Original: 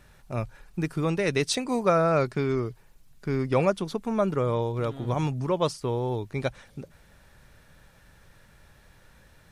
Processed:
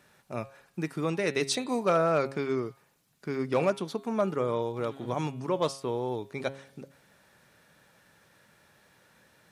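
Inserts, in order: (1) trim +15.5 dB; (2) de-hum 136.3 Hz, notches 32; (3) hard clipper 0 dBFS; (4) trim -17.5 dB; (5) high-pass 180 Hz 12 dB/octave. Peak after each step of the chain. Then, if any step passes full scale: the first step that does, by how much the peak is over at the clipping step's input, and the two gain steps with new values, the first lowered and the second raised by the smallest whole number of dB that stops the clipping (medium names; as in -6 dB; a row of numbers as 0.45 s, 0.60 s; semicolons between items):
+5.0 dBFS, +5.0 dBFS, 0.0 dBFS, -17.5 dBFS, -13.0 dBFS; step 1, 5.0 dB; step 1 +10.5 dB, step 4 -12.5 dB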